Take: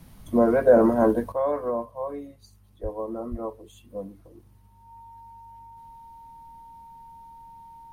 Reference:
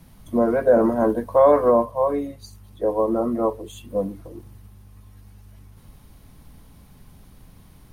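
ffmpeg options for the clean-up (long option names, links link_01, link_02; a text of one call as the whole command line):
ffmpeg -i in.wav -filter_complex "[0:a]bandreject=frequency=920:width=30,asplit=3[link_01][link_02][link_03];[link_01]afade=type=out:start_time=2.82:duration=0.02[link_04];[link_02]highpass=frequency=140:width=0.5412,highpass=frequency=140:width=1.3066,afade=type=in:start_time=2.82:duration=0.02,afade=type=out:start_time=2.94:duration=0.02[link_05];[link_03]afade=type=in:start_time=2.94:duration=0.02[link_06];[link_04][link_05][link_06]amix=inputs=3:normalize=0,asplit=3[link_07][link_08][link_09];[link_07]afade=type=out:start_time=3.3:duration=0.02[link_10];[link_08]highpass=frequency=140:width=0.5412,highpass=frequency=140:width=1.3066,afade=type=in:start_time=3.3:duration=0.02,afade=type=out:start_time=3.42:duration=0.02[link_11];[link_09]afade=type=in:start_time=3.42:duration=0.02[link_12];[link_10][link_11][link_12]amix=inputs=3:normalize=0,asetnsamples=nb_out_samples=441:pad=0,asendcmd='1.32 volume volume 11dB',volume=0dB" out.wav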